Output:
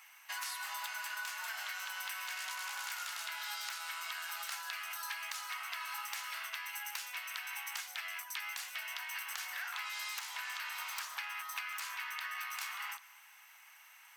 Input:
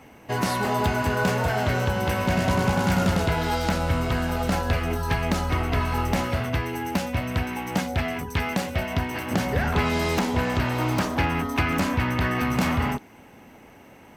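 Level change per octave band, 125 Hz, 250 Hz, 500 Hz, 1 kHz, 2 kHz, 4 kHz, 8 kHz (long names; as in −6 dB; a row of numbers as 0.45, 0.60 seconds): below −40 dB, below −40 dB, −38.0 dB, −17.0 dB, −10.5 dB, −8.0 dB, −5.5 dB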